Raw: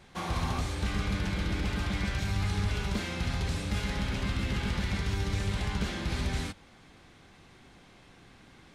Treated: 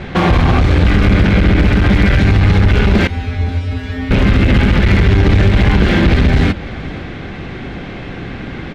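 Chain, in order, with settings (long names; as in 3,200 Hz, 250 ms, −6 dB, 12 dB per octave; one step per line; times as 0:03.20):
low-pass filter 2,200 Hz 12 dB per octave
parametric band 1,000 Hz −8 dB 0.96 octaves
in parallel at +1 dB: downward compressor, threshold −42 dBFS, peak gain reduction 15.5 dB
on the sum: asymmetric clip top −33.5 dBFS, bottom −21 dBFS
0:03.07–0:04.11: tuned comb filter 87 Hz, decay 0.37 s, harmonics odd, mix 100%
on a send: single-tap delay 512 ms −21 dB
on the sum: boost into a limiter +25.5 dB
level −1 dB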